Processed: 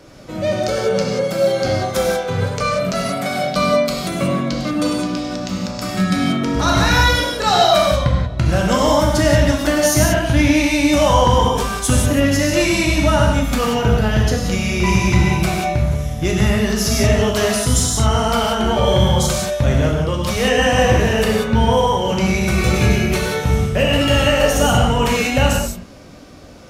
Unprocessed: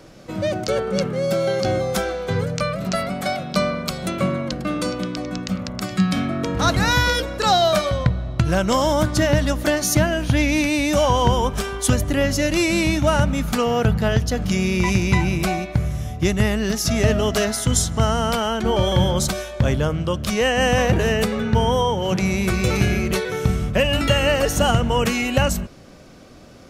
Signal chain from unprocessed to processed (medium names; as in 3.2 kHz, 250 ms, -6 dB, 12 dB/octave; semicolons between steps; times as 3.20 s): in parallel at -8.5 dB: one-sided clip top -18.5 dBFS; on the sum: gated-style reverb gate 210 ms flat, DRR -2.5 dB; trim -3 dB